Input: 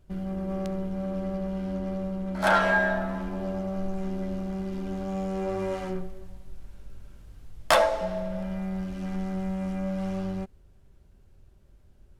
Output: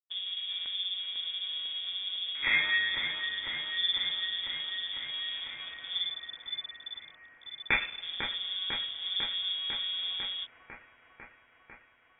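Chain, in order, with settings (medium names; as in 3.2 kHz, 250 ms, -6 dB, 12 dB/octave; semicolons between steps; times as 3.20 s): elliptic band-stop 190–1100 Hz; hum notches 50/100/150/200 Hz; crossover distortion -42 dBFS; distance through air 210 m; feedback echo behind a high-pass 499 ms, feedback 77%, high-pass 1.9 kHz, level -4 dB; frequency inversion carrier 3.5 kHz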